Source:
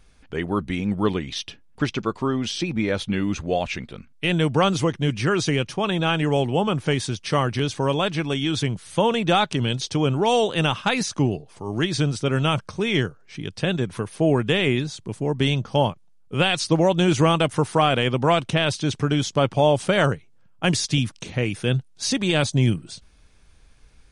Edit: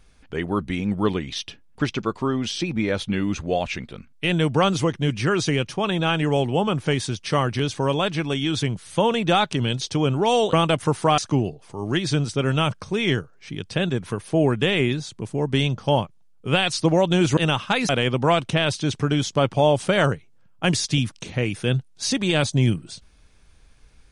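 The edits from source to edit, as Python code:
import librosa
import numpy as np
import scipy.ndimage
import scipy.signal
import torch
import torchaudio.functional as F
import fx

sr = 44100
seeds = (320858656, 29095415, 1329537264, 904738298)

y = fx.edit(x, sr, fx.swap(start_s=10.53, length_s=0.52, other_s=17.24, other_length_s=0.65), tone=tone)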